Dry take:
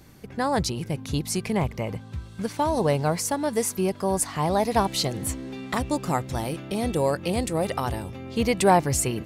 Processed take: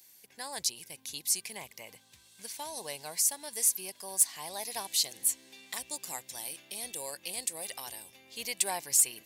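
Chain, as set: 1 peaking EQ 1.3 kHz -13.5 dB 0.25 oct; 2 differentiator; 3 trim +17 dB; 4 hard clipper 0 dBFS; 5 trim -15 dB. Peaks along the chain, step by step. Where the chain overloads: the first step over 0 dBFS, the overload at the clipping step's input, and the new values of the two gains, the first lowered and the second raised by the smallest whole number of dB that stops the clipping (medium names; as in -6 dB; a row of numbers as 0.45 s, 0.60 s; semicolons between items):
-7.5 dBFS, -7.0 dBFS, +10.0 dBFS, 0.0 dBFS, -15.0 dBFS; step 3, 10.0 dB; step 3 +7 dB, step 5 -5 dB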